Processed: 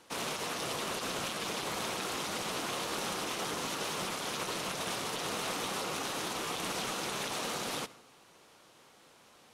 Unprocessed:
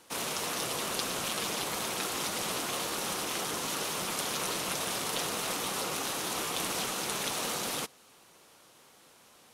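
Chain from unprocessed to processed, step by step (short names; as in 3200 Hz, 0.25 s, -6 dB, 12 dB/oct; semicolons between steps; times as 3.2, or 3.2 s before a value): high shelf 9000 Hz -11 dB; limiter -25.5 dBFS, peak gain reduction 10.5 dB; on a send: reverb RT60 0.75 s, pre-delay 62 ms, DRR 17.5 dB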